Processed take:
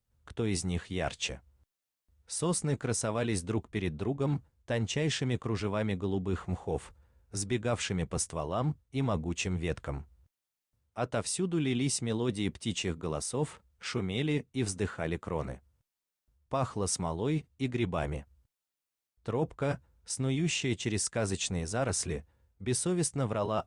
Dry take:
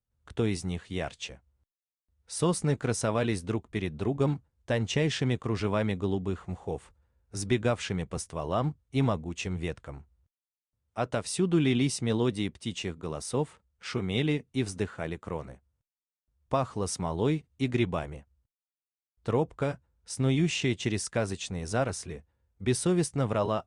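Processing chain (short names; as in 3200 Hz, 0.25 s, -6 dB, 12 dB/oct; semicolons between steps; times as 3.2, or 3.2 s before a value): dynamic EQ 7800 Hz, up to +5 dB, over -52 dBFS, Q 1.8; reverse; compressor 4:1, threshold -35 dBFS, peak gain reduction 13 dB; reverse; gain +6 dB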